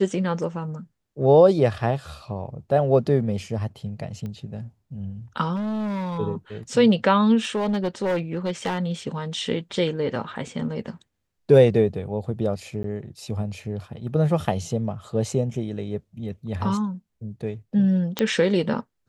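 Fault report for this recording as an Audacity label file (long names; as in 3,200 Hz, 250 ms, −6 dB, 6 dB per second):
4.260000	4.260000	click −23 dBFS
5.550000	6.190000	clipping −25 dBFS
7.390000	8.920000	clipping −20 dBFS
12.830000	12.840000	drop-out
18.190000	18.190000	click −8 dBFS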